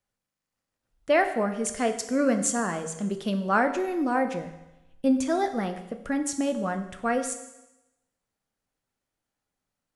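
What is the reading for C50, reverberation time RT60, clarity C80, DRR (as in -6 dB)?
10.5 dB, 0.95 s, 12.5 dB, 6.5 dB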